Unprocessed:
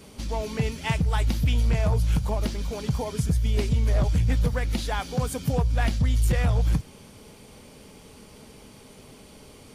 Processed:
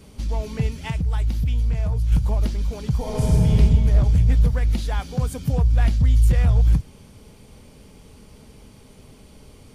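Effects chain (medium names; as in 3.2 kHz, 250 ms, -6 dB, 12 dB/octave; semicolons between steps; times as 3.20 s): 0.66–2.12 s: compression, threshold -24 dBFS, peak gain reduction 6 dB; bass shelf 140 Hz +11.5 dB; 2.97–3.49 s: reverb throw, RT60 2.8 s, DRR -6 dB; trim -3 dB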